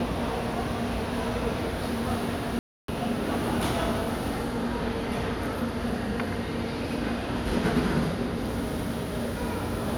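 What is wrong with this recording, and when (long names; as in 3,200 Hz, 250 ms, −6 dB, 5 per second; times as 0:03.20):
0:02.59–0:02.88: drop-out 293 ms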